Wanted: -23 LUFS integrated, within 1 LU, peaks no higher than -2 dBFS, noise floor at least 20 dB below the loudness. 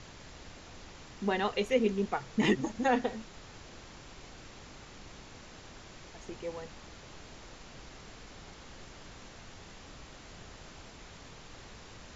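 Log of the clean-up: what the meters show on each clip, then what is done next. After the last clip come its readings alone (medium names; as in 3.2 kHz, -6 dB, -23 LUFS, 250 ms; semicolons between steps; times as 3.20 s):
noise floor -51 dBFS; noise floor target -52 dBFS; loudness -32.0 LUFS; peak level -15.0 dBFS; loudness target -23.0 LUFS
-> noise print and reduce 6 dB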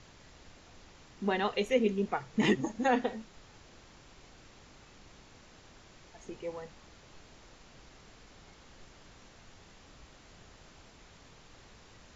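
noise floor -57 dBFS; loudness -31.5 LUFS; peak level -15.0 dBFS; loudness target -23.0 LUFS
-> trim +8.5 dB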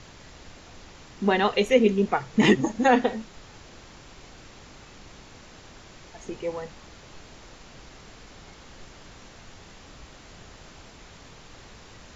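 loudness -23.0 LUFS; peak level -6.5 dBFS; noise floor -49 dBFS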